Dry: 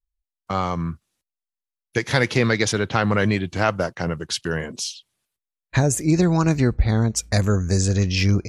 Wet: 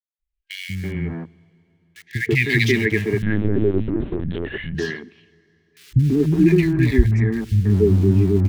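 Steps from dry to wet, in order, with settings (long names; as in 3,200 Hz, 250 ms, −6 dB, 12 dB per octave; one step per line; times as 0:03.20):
brick-wall band-stop 450–1,600 Hz
auto-filter low-pass sine 0.48 Hz 310–2,800 Hz
in parallel at −5 dB: centre clipping without the shift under −26.5 dBFS
on the sum: three-band delay without the direct sound highs, lows, mids 190/330 ms, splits 200/1,900 Hz
on a send at −23 dB: convolution reverb RT60 3.3 s, pre-delay 7 ms
0:03.22–0:04.75: on the sum: linear-prediction vocoder at 8 kHz pitch kept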